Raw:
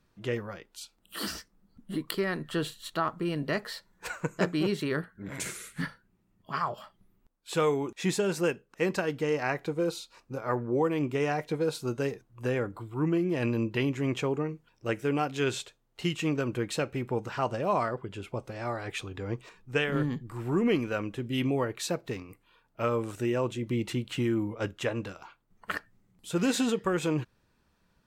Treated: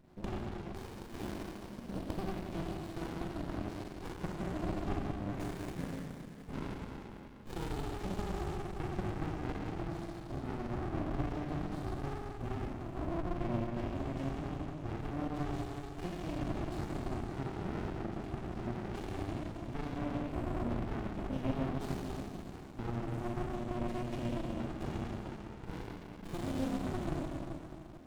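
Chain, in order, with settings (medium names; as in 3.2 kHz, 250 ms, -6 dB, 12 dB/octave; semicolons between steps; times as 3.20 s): high-pass 110 Hz 12 dB/octave; peaking EQ 370 Hz +13 dB 1.1 oct; compression 4:1, threshold -46 dBFS, peak gain reduction 27.5 dB; Schroeder reverb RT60 2.8 s, combs from 30 ms, DRR -5 dB; sliding maximum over 65 samples; trim +4.5 dB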